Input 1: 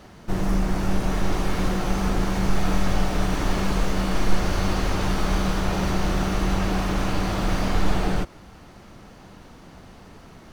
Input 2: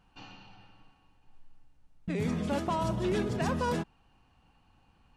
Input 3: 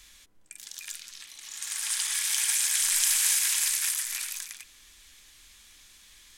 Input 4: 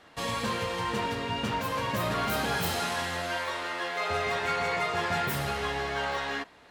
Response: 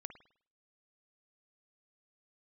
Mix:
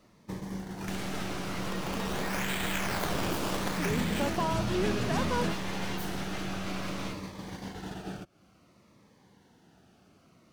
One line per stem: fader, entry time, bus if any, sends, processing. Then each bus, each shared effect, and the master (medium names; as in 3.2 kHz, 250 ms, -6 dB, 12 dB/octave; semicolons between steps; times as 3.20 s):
-1.0 dB, 0.00 s, send -5.5 dB, high-pass 110 Hz 12 dB/octave; compression 6:1, threshold -35 dBFS, peak gain reduction 13 dB; Shepard-style phaser falling 0.57 Hz
0.0 dB, 1.70 s, no send, none
+0.5 dB, 0.00 s, no send, low-pass 3.5 kHz 12 dB/octave; decimation with a swept rate 15×, swing 100% 0.67 Hz
-6.5 dB, 0.70 s, no send, full-wave rectifier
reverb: on, pre-delay 51 ms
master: gate -36 dBFS, range -14 dB